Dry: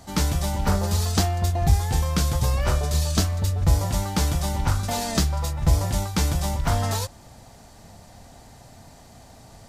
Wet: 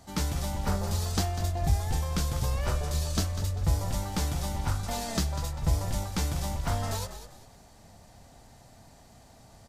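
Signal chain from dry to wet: frequency-shifting echo 197 ms, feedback 32%, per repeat -46 Hz, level -11 dB; trim -7 dB

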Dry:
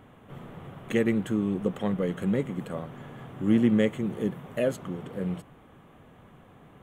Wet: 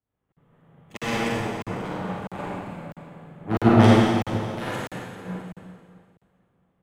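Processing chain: Chebyshev shaper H 3 -26 dB, 7 -11 dB, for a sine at -10.5 dBFS; delay 594 ms -14.5 dB; reverberation RT60 3.4 s, pre-delay 38 ms, DRR -8 dB; crackling interface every 0.65 s, samples 2048, zero, from 0.32 s; three bands expanded up and down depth 100%; trim -8 dB

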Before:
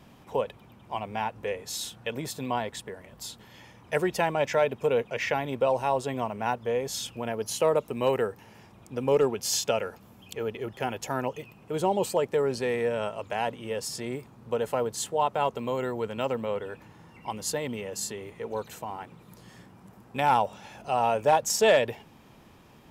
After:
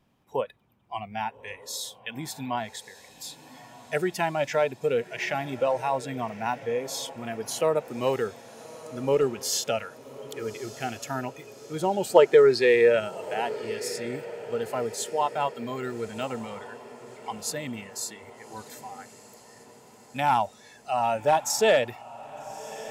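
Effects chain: spectral noise reduction 15 dB; time-frequency box 12.15–13.00 s, 320–5400 Hz +10 dB; echo that smears into a reverb 1225 ms, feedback 55%, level -16 dB

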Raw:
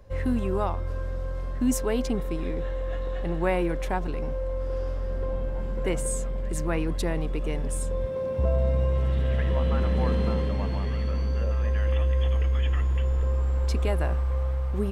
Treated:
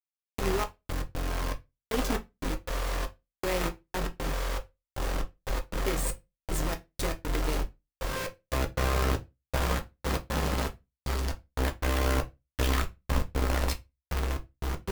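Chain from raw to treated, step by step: hum notches 50/100/150 Hz; peak limiter -18 dBFS, peak gain reduction 5.5 dB; trance gate "...xx..x.xxx" 118 bpm; bit crusher 5-bit; Chebyshev shaper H 2 -11 dB, 6 -18 dB, 8 -9 dB, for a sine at -17.5 dBFS; reverberation RT60 0.20 s, pre-delay 6 ms, DRR 5 dB; trim -4 dB

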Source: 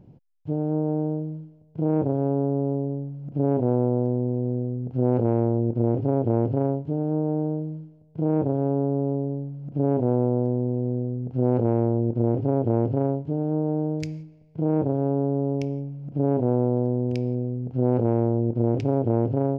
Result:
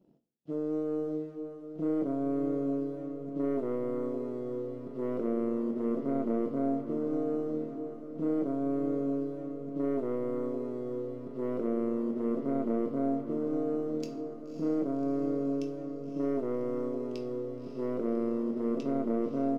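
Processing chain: Chebyshev high-pass 220 Hz, order 3; high-order bell 1.4 kHz -14 dB; band-stop 980 Hz; waveshaping leveller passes 1; feedback comb 670 Hz, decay 0.16 s, harmonics all, mix 70%; saturation -21 dBFS, distortion -28 dB; doubling 22 ms -12 dB; echo that smears into a reverb 573 ms, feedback 59%, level -9.5 dB; on a send at -6.5 dB: reverberation, pre-delay 3 ms

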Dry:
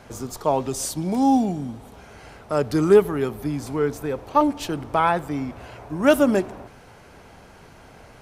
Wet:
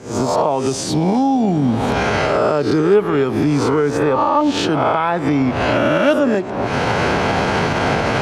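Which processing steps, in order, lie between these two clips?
reverse spectral sustain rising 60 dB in 0.79 s; recorder AGC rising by 80 dB/s; band-pass 100–4800 Hz

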